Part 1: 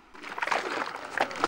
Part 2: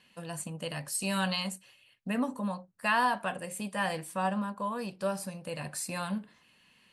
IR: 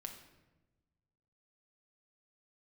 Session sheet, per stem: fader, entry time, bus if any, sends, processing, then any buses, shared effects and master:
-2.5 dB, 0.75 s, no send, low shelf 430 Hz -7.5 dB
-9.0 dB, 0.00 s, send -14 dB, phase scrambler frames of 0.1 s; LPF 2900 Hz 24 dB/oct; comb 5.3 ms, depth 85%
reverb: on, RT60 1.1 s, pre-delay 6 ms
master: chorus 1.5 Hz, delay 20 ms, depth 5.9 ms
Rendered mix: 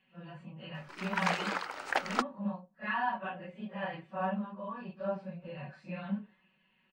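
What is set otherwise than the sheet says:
stem 2: send -14 dB -> -22 dB; master: missing chorus 1.5 Hz, delay 20 ms, depth 5.9 ms

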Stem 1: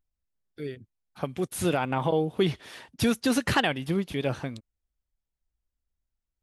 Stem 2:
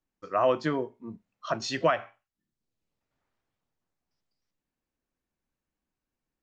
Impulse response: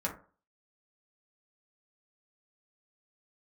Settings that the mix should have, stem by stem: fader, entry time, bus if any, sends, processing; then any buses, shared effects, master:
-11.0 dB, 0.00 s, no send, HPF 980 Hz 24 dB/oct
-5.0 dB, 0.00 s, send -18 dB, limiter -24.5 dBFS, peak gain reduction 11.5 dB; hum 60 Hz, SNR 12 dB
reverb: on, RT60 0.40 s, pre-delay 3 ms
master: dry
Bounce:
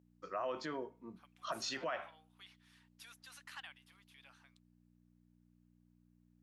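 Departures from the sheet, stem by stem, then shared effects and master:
stem 1 -11.0 dB -> -23.0 dB; master: extra HPF 420 Hz 6 dB/oct

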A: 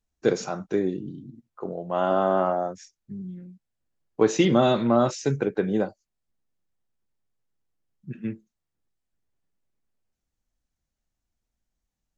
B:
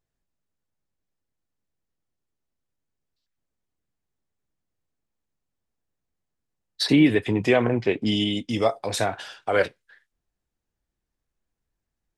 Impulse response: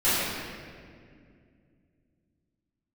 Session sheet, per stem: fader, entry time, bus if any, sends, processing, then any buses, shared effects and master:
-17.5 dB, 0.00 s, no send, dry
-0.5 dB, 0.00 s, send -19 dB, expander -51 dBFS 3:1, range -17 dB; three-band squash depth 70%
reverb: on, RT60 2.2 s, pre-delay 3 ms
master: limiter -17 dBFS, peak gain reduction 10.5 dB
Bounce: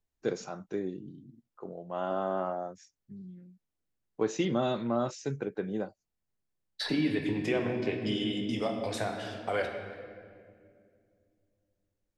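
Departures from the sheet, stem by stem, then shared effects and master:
stem A -17.5 dB -> -9.5 dB; stem B -0.5 dB -> -12.0 dB

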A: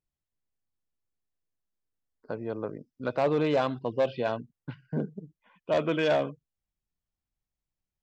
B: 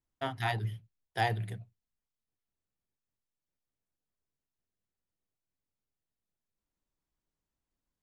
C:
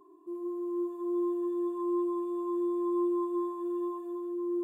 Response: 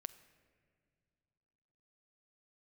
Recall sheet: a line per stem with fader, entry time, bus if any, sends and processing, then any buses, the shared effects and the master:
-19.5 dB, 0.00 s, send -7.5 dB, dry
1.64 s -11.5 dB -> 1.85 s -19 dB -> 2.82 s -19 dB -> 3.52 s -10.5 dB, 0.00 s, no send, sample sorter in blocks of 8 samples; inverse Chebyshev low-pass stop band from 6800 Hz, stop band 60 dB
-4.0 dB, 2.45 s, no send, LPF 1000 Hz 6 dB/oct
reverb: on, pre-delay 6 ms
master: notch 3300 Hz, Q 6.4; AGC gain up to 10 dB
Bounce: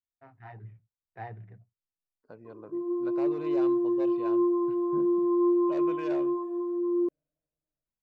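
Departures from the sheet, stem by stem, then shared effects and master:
stem A -19.5 dB -> -25.5 dB; stem B -11.5 dB -> -20.0 dB

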